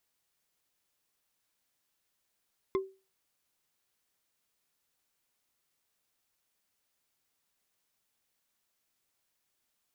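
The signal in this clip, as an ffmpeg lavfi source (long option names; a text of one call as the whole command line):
ffmpeg -f lavfi -i "aevalsrc='0.0668*pow(10,-3*t/0.31)*sin(2*PI*384*t)+0.0316*pow(10,-3*t/0.092)*sin(2*PI*1058.7*t)+0.015*pow(10,-3*t/0.041)*sin(2*PI*2075.1*t)+0.00708*pow(10,-3*t/0.022)*sin(2*PI*3430.3*t)+0.00335*pow(10,-3*t/0.014)*sin(2*PI*5122.6*t)':duration=0.45:sample_rate=44100" out.wav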